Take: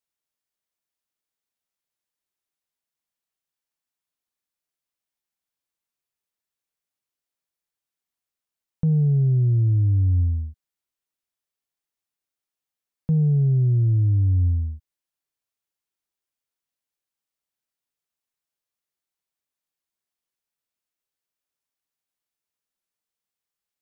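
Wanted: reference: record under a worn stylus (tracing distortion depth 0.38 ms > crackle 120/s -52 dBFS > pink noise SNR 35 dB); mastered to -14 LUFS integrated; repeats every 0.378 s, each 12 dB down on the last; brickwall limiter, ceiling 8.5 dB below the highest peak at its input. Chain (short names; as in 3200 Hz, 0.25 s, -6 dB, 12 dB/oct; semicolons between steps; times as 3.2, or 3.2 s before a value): limiter -24 dBFS; feedback echo 0.378 s, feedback 25%, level -12 dB; tracing distortion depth 0.38 ms; crackle 120/s -52 dBFS; pink noise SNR 35 dB; gain +15.5 dB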